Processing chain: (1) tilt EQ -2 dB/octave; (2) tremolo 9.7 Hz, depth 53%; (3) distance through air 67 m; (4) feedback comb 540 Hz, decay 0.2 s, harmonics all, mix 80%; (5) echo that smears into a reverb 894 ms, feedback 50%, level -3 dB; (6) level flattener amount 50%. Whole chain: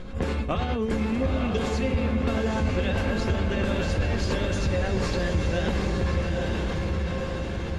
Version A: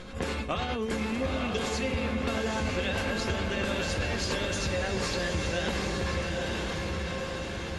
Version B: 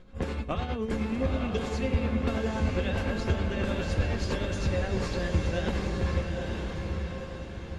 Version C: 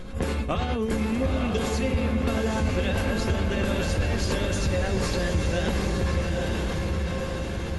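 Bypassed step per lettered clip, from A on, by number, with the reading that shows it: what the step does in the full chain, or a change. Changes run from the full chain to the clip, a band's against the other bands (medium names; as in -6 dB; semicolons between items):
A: 1, 125 Hz band -7.0 dB; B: 6, crest factor change +2.0 dB; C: 3, 8 kHz band +5.0 dB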